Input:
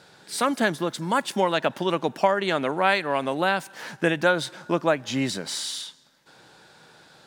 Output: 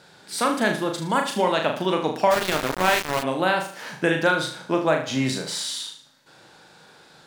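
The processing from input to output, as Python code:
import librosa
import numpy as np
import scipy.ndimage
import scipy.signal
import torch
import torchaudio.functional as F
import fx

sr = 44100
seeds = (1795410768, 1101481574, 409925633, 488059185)

y = fx.room_flutter(x, sr, wall_m=6.5, rt60_s=0.46)
y = fx.sample_gate(y, sr, floor_db=-20.5, at=(2.3, 3.22), fade=0.02)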